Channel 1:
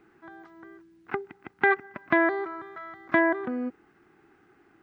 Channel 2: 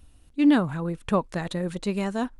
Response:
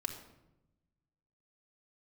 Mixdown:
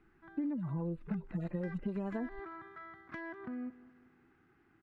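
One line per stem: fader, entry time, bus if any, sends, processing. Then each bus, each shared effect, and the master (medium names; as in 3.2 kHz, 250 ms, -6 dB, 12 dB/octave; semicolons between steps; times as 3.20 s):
-0.5 dB, 0.00 s, no send, echo send -18.5 dB, peaking EQ 540 Hz -12.5 dB 2.2 oct; compression 12:1, threshold -35 dBFS, peak gain reduction 13 dB; saturation -32 dBFS, distortion -12 dB
+1.5 dB, 0.00 s, no send, no echo send, harmonic-percussive separation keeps harmonic; gate with hold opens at -44 dBFS; compression, threshold -27 dBFS, peak gain reduction 12.5 dB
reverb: none
echo: feedback delay 196 ms, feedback 49%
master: low-pass 1.4 kHz 6 dB/octave; compression 5:1, threshold -34 dBFS, peak gain reduction 9.5 dB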